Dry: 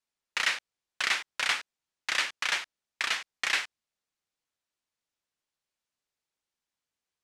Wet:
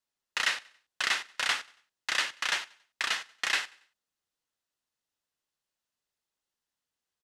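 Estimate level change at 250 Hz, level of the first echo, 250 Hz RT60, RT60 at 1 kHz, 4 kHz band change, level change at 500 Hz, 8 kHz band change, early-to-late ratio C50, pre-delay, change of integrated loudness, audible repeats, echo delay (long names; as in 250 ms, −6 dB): 0.0 dB, −23.0 dB, no reverb audible, no reverb audible, 0.0 dB, 0.0 dB, 0.0 dB, no reverb audible, no reverb audible, −0.5 dB, 2, 93 ms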